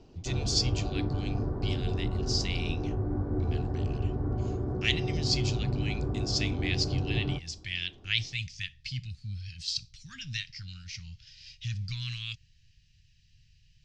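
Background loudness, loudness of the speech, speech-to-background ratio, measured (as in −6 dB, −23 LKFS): −32.5 LKFS, −34.0 LKFS, −1.5 dB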